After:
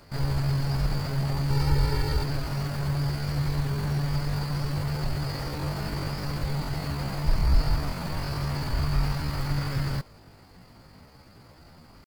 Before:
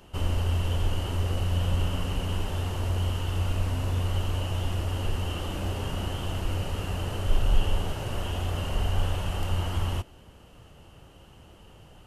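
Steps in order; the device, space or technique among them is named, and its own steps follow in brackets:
0:01.52–0:02.26: comb filter 3.5 ms, depth 96%
chipmunk voice (pitch shifter +8 semitones)

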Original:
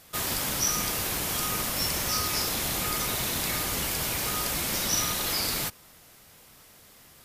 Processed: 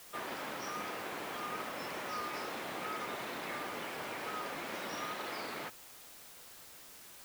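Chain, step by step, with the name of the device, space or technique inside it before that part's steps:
wax cylinder (band-pass filter 310–2,000 Hz; tape wow and flutter; white noise bed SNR 12 dB)
level −4.5 dB

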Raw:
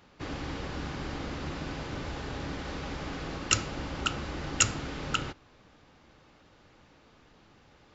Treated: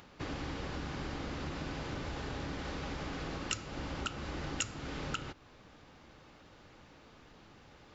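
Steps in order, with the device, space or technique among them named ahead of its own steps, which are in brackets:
upward and downward compression (upward compression, threshold −55 dBFS; downward compressor 3 to 1, threshold −38 dBFS, peak gain reduction 15.5 dB)
level +1 dB

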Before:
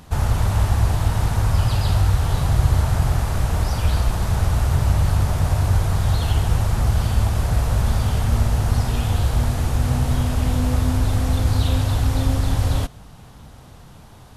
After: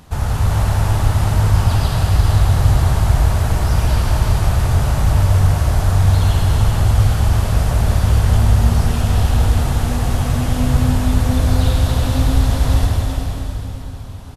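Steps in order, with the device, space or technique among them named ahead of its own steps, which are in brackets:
cave (single-tap delay 378 ms −8 dB; convolution reverb RT60 3.5 s, pre-delay 84 ms, DRR −1 dB)

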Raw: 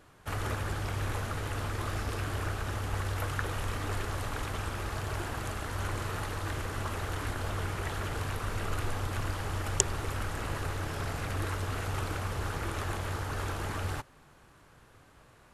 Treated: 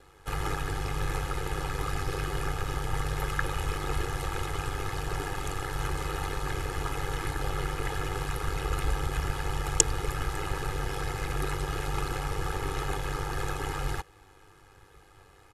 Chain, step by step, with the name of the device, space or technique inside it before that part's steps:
ring-modulated robot voice (ring modulation 49 Hz; comb filter 2.4 ms, depth 83%)
level +3 dB

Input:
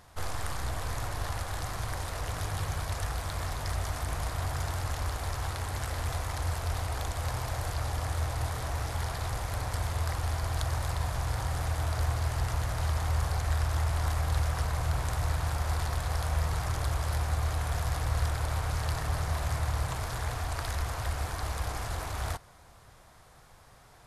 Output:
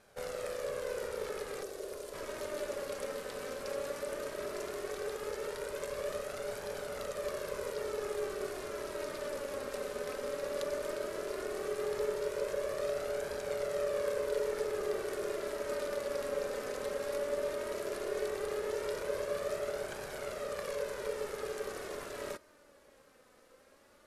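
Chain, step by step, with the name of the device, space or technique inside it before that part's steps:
0:01.63–0:02.14: parametric band 1,300 Hz −9.5 dB 2.8 octaves
alien voice (ring modulation 500 Hz; flanger 0.15 Hz, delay 1.2 ms, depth 2.8 ms, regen +42%)

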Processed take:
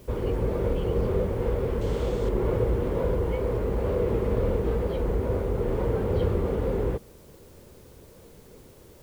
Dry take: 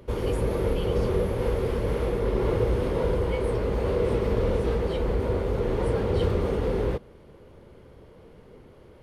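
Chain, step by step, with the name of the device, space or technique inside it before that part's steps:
cassette deck with a dirty head (head-to-tape spacing loss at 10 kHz 22 dB; tape wow and flutter; white noise bed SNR 33 dB)
0:01.81–0:02.29: flat-topped bell 5,000 Hz +9.5 dB

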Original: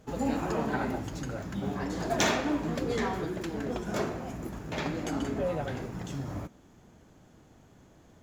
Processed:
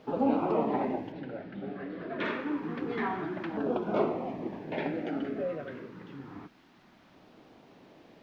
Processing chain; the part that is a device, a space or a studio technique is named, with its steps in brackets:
shortwave radio (band-pass filter 260–2,900 Hz; amplitude tremolo 0.25 Hz, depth 60%; auto-filter notch saw down 0.28 Hz 420–2,100 Hz; white noise bed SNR 22 dB)
0:01.12–0:02.25: low-pass filter 4,500 Hz 24 dB per octave
high-frequency loss of the air 280 metres
level +6.5 dB

